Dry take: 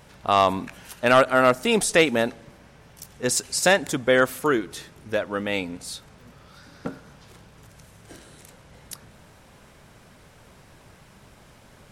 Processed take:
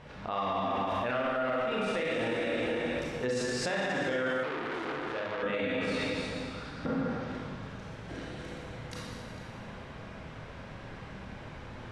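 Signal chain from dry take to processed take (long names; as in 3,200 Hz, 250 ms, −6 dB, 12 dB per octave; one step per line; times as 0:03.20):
feedback delay that plays each chunk backwards 224 ms, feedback 41%, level −7.5 dB
low-pass filter 3,300 Hz 12 dB per octave
convolution reverb RT60 1.7 s, pre-delay 23 ms, DRR −5 dB
downward compressor 3 to 1, threshold −25 dBFS, peak gain reduction 14 dB
brickwall limiter −23 dBFS, peak gain reduction 10.5 dB
0:04.43–0:05.43: saturating transformer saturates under 1,300 Hz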